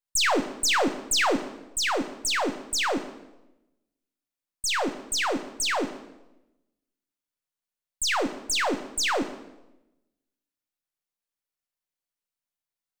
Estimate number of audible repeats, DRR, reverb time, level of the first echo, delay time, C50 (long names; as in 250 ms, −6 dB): no echo audible, 7.5 dB, 0.95 s, no echo audible, no echo audible, 11.5 dB